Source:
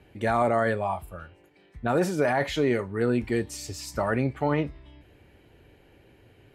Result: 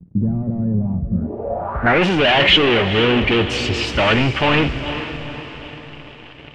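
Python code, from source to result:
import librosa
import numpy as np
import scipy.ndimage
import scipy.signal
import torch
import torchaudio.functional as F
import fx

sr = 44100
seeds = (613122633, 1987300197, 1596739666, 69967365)

y = fx.leveller(x, sr, passes=5)
y = fx.echo_diffused(y, sr, ms=466, feedback_pct=50, wet_db=-10.5)
y = fx.filter_sweep_lowpass(y, sr, from_hz=180.0, to_hz=2900.0, start_s=1.12, end_s=2.05, q=4.7)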